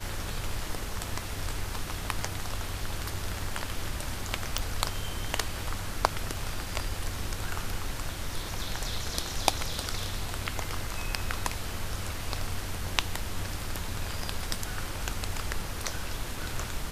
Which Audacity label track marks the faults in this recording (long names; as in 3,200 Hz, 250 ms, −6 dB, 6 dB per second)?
4.580000	4.580000	click